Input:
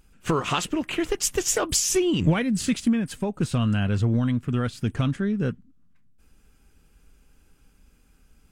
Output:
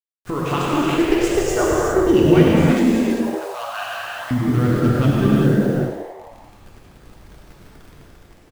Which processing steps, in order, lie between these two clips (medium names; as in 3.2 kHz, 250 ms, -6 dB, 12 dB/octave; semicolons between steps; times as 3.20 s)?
local Wiener filter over 15 samples; 1.56–2.07 s: steep low-pass 1.9 kHz 96 dB/octave; de-esser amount 85%; 2.93–4.31 s: elliptic high-pass 660 Hz, stop band 40 dB; level rider gain up to 9 dB; bit crusher 7-bit; frequency-shifting echo 99 ms, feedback 64%, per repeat +85 Hz, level -10 dB; gated-style reverb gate 430 ms flat, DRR -5.5 dB; trim -5 dB